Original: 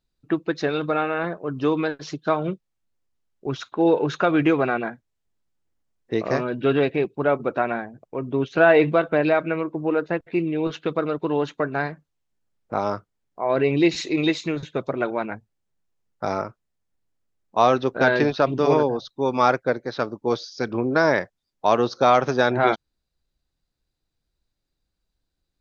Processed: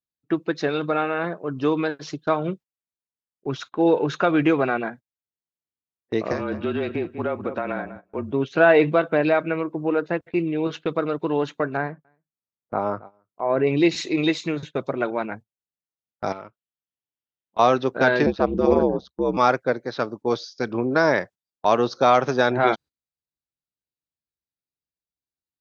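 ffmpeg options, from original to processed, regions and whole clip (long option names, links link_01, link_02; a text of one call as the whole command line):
ffmpeg -i in.wav -filter_complex "[0:a]asettb=1/sr,asplit=3[link_01][link_02][link_03];[link_01]atrim=end=6.324[link_04];[link_02]atrim=start=6.32:end=8.32,asetpts=PTS-STARTPTS,afade=type=in:duration=0.004:curve=qsin,afade=type=out:start_time=1.996:duration=0.004:curve=qsin,asplit=2[link_05][link_06];[link_06]adelay=193,lowpass=frequency=2100:poles=1,volume=-14dB,asplit=2[link_07][link_08];[link_08]adelay=193,lowpass=frequency=2100:poles=1,volume=0.24,asplit=2[link_09][link_10];[link_10]adelay=193,lowpass=frequency=2100:poles=1,volume=0.24[link_11];[link_05][link_07][link_09][link_11]amix=inputs=4:normalize=0,atrim=end_sample=88200,acompressor=threshold=-21dB:ratio=5:attack=3.2:release=140:knee=1:detection=peak,afreqshift=-32[link_12];[link_03]atrim=start=8.316[link_13];[link_04][link_12]acrossfade=duration=0.004:curve1=hsin:curve2=qsin[link_14];[link_14][link_13]acrossfade=duration=0.004:curve1=qsin:curve2=hsin,asettb=1/sr,asplit=3[link_15][link_16][link_17];[link_15]atrim=end=11.774[link_18];[link_16]atrim=start=11.77:end=13.67,asetpts=PTS-STARTPTS,afade=type=in:duration=0.004:curve=qsin,afade=type=out:start_time=1.896:duration=0.004:curve=qsin,lowpass=1800,aecho=1:1:275:0.112,atrim=end_sample=83790[link_19];[link_17]atrim=start=13.666[link_20];[link_18][link_19]acrossfade=duration=0.004:curve1=hsin:curve2=qsin[link_21];[link_21][link_20]acrossfade=duration=0.004:curve1=qsin:curve2=hsin,asettb=1/sr,asplit=3[link_22][link_23][link_24];[link_22]atrim=end=16.324[link_25];[link_23]atrim=start=16.32:end=17.59,asetpts=PTS-STARTPTS,afade=type=in:duration=0.004:curve=qsin,afade=type=out:start_time=1.266:duration=0.004:curve=qsin,acompressor=threshold=-35dB:ratio=4:attack=3.2:release=140:knee=1:detection=peak,lowpass=frequency=3200:width_type=q:width=4.3[link_26];[link_24]atrim=start=17.586[link_27];[link_25][link_26]acrossfade=duration=0.004:curve1=hsin:curve2=qsin[link_28];[link_28][link_27]acrossfade=duration=0.004:curve1=qsin:curve2=hsin,asettb=1/sr,asplit=3[link_29][link_30][link_31];[link_29]atrim=end=18.264[link_32];[link_30]atrim=start=18.26:end=19.37,asetpts=PTS-STARTPTS,afade=type=in:duration=0.004:curve=qsin,afade=type=out:start_time=1.106:duration=0.004:curve=qsin,tiltshelf=frequency=810:gain=6.5,aeval=exprs='val(0)*sin(2*PI*67*n/s)':channel_layout=same[link_33];[link_31]atrim=start=19.366[link_34];[link_32][link_33]acrossfade=duration=0.004:curve1=hsin:curve2=qsin[link_35];[link_35][link_34]acrossfade=duration=0.004:curve1=qsin:curve2=hsin,highpass=90,agate=range=-18dB:threshold=-38dB:ratio=16:detection=peak" out.wav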